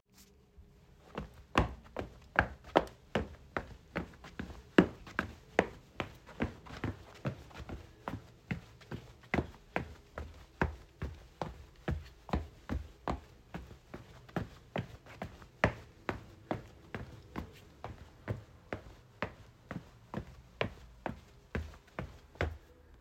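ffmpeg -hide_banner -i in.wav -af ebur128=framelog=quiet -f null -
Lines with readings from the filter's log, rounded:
Integrated loudness:
  I:         -39.8 LUFS
  Threshold: -50.2 LUFS
Loudness range:
  LRA:         9.4 LU
  Threshold: -60.1 LUFS
  LRA low:   -45.5 LUFS
  LRA high:  -36.1 LUFS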